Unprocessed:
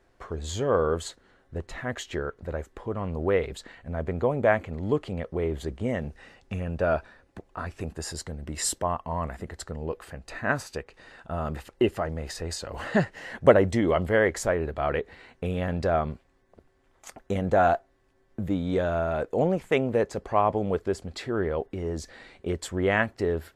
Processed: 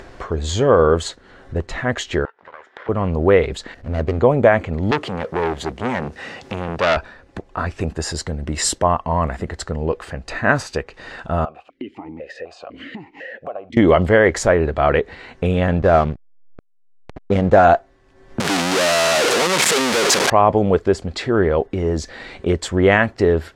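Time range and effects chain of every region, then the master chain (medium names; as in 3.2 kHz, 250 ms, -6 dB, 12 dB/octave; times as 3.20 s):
2.25–2.89 s: comb filter that takes the minimum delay 0.56 ms + band-pass 780–2500 Hz + compression 3:1, threshold -53 dBFS
3.74–4.20 s: median filter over 41 samples + band-stop 180 Hz, Q 5.1
4.91–6.97 s: companding laws mixed up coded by mu + high-pass 120 Hz + transformer saturation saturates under 2.3 kHz
11.45–13.77 s: compression, threshold -26 dBFS + stepped vowel filter 4 Hz
15.79–17.65 s: level-controlled noise filter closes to 530 Hz, open at -23 dBFS + hysteresis with a dead band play -36.5 dBFS
18.40–20.30 s: one-bit comparator + high-pass 190 Hz + tilt EQ +2 dB/octave
whole clip: low-pass 7.2 kHz 12 dB/octave; upward compressor, threshold -39 dBFS; loudness maximiser +12 dB; trim -1 dB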